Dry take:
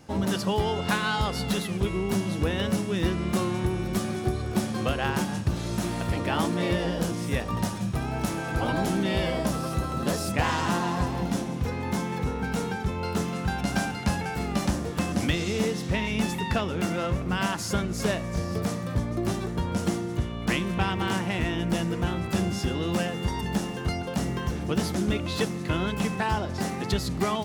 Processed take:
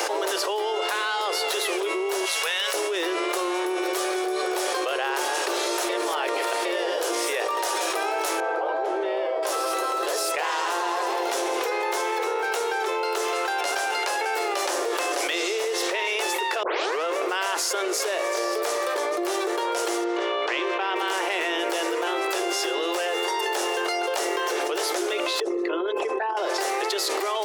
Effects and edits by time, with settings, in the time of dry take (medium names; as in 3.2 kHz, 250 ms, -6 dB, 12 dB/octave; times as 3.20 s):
2.25–2.74 s: amplifier tone stack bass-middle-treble 10-0-10
5.89–6.65 s: reverse
8.40–9.43 s: band-pass filter 580 Hz, Q 0.9
16.63 s: tape start 0.41 s
20.04–20.96 s: distance through air 140 m
25.40–26.37 s: resonances exaggerated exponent 2
whole clip: steep high-pass 360 Hz 72 dB/octave; level flattener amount 100%; trim -3 dB